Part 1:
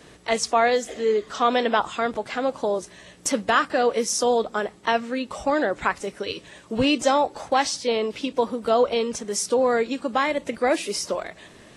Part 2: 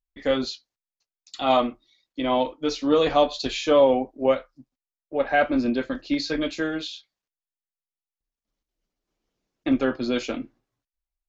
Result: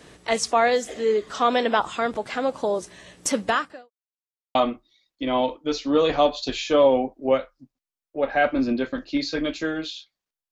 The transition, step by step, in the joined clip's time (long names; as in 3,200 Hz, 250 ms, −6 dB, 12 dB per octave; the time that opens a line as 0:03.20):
part 1
0:03.48–0:03.91: fade out quadratic
0:03.91–0:04.55: silence
0:04.55: continue with part 2 from 0:01.52